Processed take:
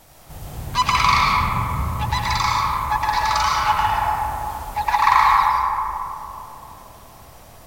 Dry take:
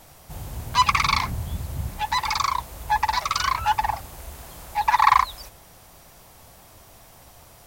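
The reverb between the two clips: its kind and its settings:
comb and all-pass reverb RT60 3.2 s, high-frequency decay 0.3×, pre-delay 70 ms, DRR −4.5 dB
level −1 dB

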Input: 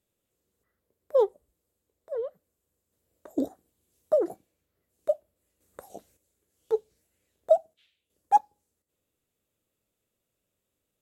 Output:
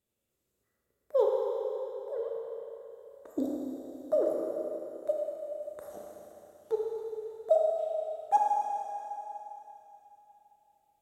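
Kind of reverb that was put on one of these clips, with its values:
four-comb reverb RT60 3.4 s, combs from 27 ms, DRR −2 dB
level −5 dB

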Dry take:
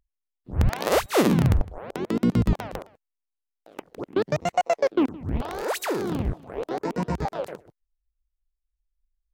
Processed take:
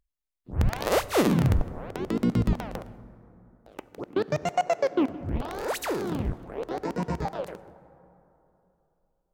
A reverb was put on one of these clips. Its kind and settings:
dense smooth reverb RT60 3.1 s, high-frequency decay 0.4×, DRR 15.5 dB
level −2.5 dB

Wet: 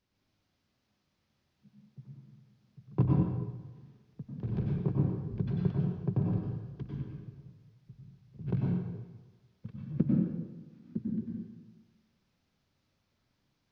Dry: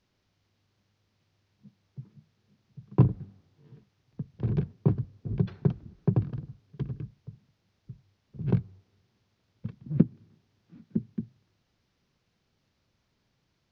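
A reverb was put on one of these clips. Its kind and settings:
dense smooth reverb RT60 1.2 s, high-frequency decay 0.85×, pre-delay 85 ms, DRR −3.5 dB
level −7.5 dB

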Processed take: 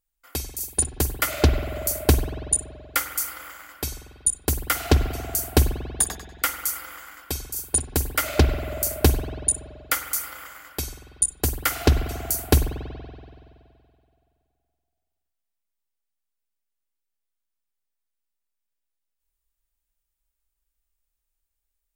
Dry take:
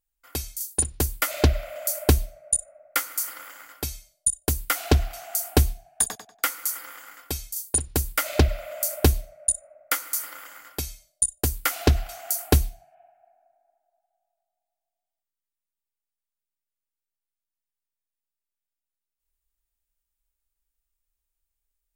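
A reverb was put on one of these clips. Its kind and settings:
spring reverb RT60 2.3 s, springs 47 ms, chirp 60 ms, DRR 8.5 dB
level +1 dB

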